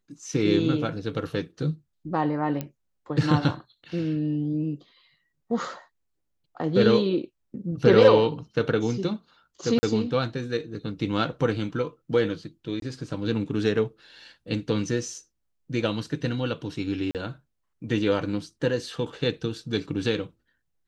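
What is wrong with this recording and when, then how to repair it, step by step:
2.61 s: pop -16 dBFS
9.79–9.83 s: dropout 40 ms
12.80–12.82 s: dropout 22 ms
17.11–17.15 s: dropout 38 ms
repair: de-click; interpolate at 9.79 s, 40 ms; interpolate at 12.80 s, 22 ms; interpolate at 17.11 s, 38 ms

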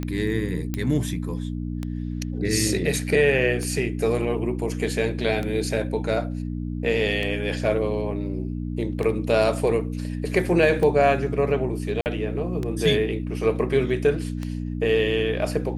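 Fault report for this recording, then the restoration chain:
hum 60 Hz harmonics 5 -29 dBFS
tick 33 1/3 rpm -16 dBFS
0.74 s: pop -13 dBFS
12.01–12.06 s: dropout 49 ms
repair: de-click; de-hum 60 Hz, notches 5; interpolate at 12.01 s, 49 ms

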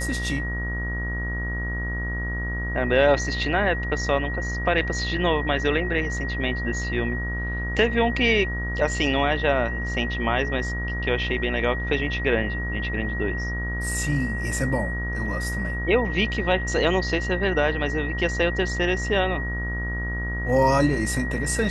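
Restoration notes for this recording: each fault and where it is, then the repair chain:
buzz 60 Hz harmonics 33 -29 dBFS
whine 1.9 kHz -30 dBFS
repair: band-stop 1.9 kHz, Q 30; de-hum 60 Hz, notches 33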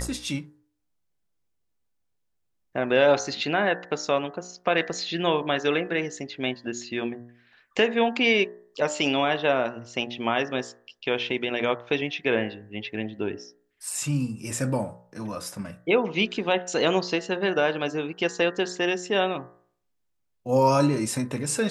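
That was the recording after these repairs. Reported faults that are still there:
nothing left

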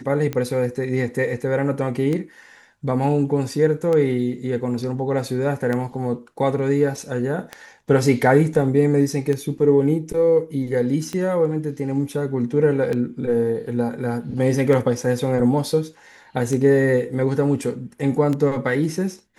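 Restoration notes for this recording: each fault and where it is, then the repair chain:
tick 33 1/3 rpm -13 dBFS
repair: de-click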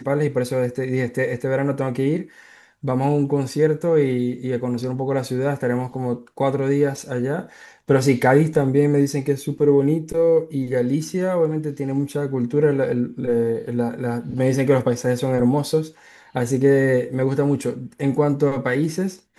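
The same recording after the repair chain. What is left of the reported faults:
nothing left

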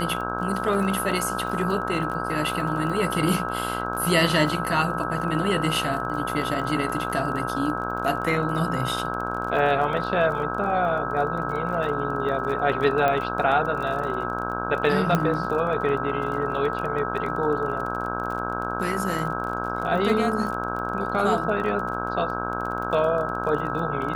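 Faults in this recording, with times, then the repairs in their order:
buzz 60 Hz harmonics 27 -30 dBFS
crackle 29 per s -31 dBFS
whine 1.3 kHz -30 dBFS
13.08 s: pop -12 dBFS
15.15 s: pop -9 dBFS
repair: de-click; band-stop 1.3 kHz, Q 30; de-hum 60 Hz, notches 27

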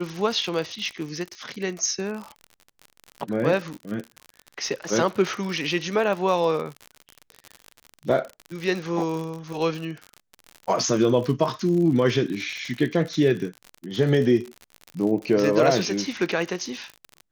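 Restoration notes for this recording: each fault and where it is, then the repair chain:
crackle 55 per s -29 dBFS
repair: de-click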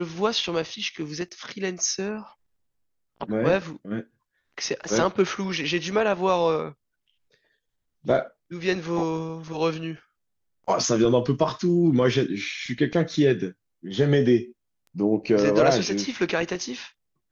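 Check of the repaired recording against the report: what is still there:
nothing left

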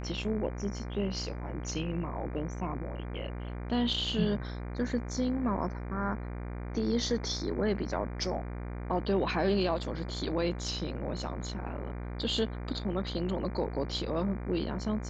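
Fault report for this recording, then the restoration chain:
buzz 60 Hz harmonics 40 -38 dBFS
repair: de-hum 60 Hz, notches 40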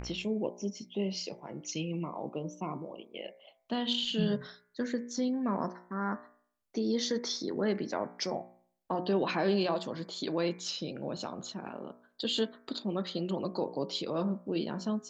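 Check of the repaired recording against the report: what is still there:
nothing left

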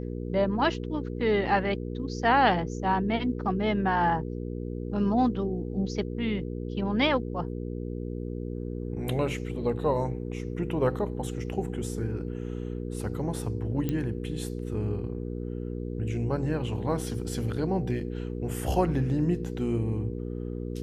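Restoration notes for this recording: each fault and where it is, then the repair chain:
hum 60 Hz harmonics 8 -34 dBFS
13.89 s: pop -17 dBFS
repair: de-click; de-hum 60 Hz, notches 8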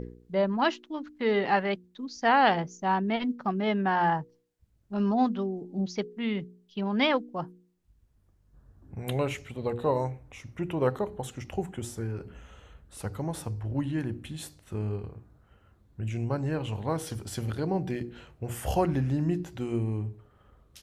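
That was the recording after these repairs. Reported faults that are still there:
nothing left

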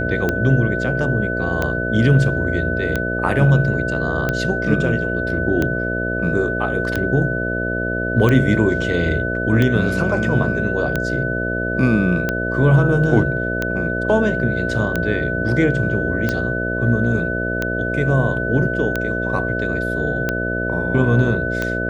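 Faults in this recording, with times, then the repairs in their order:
buzz 60 Hz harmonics 11 -24 dBFS
tick 45 rpm -7 dBFS
whine 1.5 kHz -23 dBFS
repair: de-click; de-hum 60 Hz, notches 11; band-stop 1.5 kHz, Q 30

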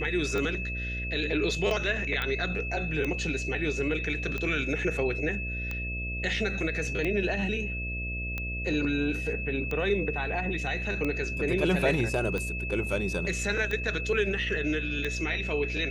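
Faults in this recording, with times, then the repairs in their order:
buzz 60 Hz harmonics 11 -35 dBFS
tick 45 rpm -19 dBFS
whine 2.6 kHz -34 dBFS
2.22 s: pop -17 dBFS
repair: de-click; de-hum 60 Hz, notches 11; band-stop 2.6 kHz, Q 30

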